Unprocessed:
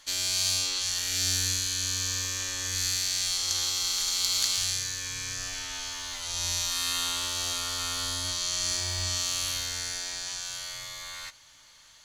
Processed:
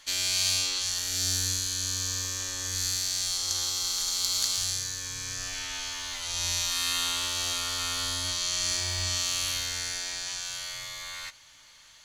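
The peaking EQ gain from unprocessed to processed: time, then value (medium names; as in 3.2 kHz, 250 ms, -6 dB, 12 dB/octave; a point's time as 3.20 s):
peaking EQ 2.4 kHz 0.96 oct
0.58 s +3.5 dB
1.10 s -5.5 dB
5.17 s -5.5 dB
5.63 s +3 dB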